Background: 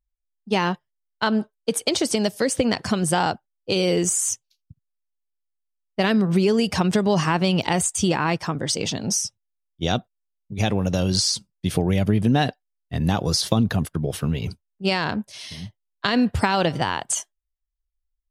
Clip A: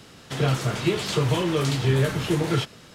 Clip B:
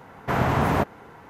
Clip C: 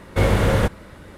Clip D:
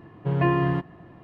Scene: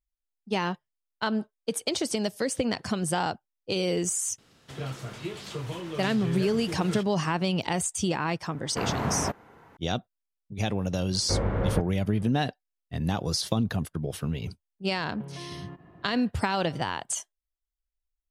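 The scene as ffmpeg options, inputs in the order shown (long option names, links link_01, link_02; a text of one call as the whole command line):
ffmpeg -i bed.wav -i cue0.wav -i cue1.wav -i cue2.wav -i cue3.wav -filter_complex "[0:a]volume=-6.5dB[link_01];[3:a]lowpass=1400[link_02];[4:a]acompressor=threshold=-33dB:ratio=6:attack=3.2:release=140:knee=1:detection=peak[link_03];[1:a]atrim=end=2.94,asetpts=PTS-STARTPTS,volume=-12.5dB,afade=type=in:duration=0.004:curve=hsin,afade=type=out:start_time=2.936:duration=0.004:curve=hsin,adelay=4380[link_04];[2:a]atrim=end=1.29,asetpts=PTS-STARTPTS,volume=-7.5dB,afade=type=in:duration=0.004:curve=hsin,afade=type=out:start_time=1.286:duration=0.004:curve=hsin,adelay=8480[link_05];[link_02]atrim=end=1.17,asetpts=PTS-STARTPTS,volume=-9dB,afade=type=in:duration=0.004:curve=hsin,afade=type=out:start_time=1.166:duration=0.004:curve=hsin,adelay=11130[link_06];[link_03]atrim=end=1.23,asetpts=PTS-STARTPTS,volume=-5.5dB,afade=type=in:duration=0.004:curve=hsin,afade=type=out:start_time=1.226:duration=0.004:curve=hsin,adelay=14950[link_07];[link_01][link_04][link_05][link_06][link_07]amix=inputs=5:normalize=0" out.wav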